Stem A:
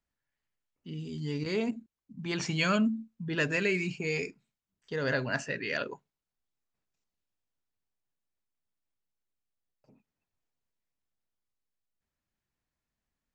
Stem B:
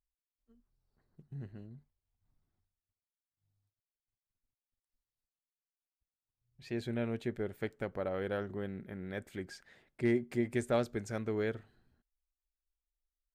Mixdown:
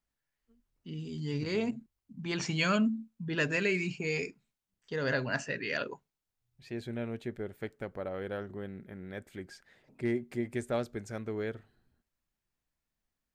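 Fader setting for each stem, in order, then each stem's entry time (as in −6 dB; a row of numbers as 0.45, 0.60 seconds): −1.0, −1.5 decibels; 0.00, 0.00 seconds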